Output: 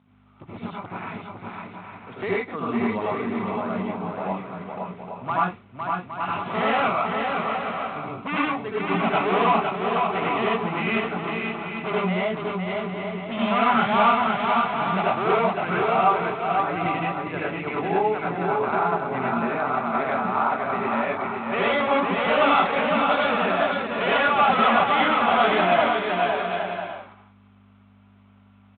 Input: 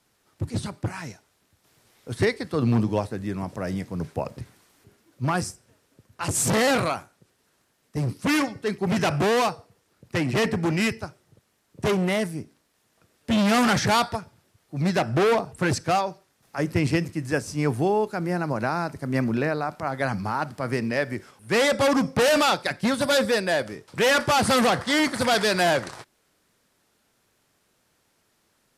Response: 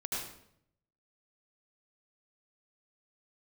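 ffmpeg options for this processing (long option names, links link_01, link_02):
-filter_complex "[0:a]asplit=2[link_01][link_02];[link_02]acompressor=threshold=-34dB:ratio=5,volume=-2.5dB[link_03];[link_01][link_03]amix=inputs=2:normalize=0,aeval=exprs='val(0)+0.0112*(sin(2*PI*50*n/s)+sin(2*PI*2*50*n/s)/2+sin(2*PI*3*50*n/s)/3+sin(2*PI*4*50*n/s)/4+sin(2*PI*5*50*n/s)/5)':channel_layout=same,highpass=320,equalizer=frequency=330:width_type=q:width=4:gain=-9,equalizer=frequency=510:width_type=q:width=4:gain=-8,equalizer=frequency=1200:width_type=q:width=4:gain=5,equalizer=frequency=1700:width_type=q:width=4:gain=-9,lowpass=frequency=2900:width=0.5412,lowpass=frequency=2900:width=1.3066,aecho=1:1:510|816|999.6|1110|1176:0.631|0.398|0.251|0.158|0.1[link_04];[1:a]atrim=start_sample=2205,atrim=end_sample=6174[link_05];[link_04][link_05]afir=irnorm=-1:irlink=0" -ar 8000 -c:a adpcm_g726 -b:a 32k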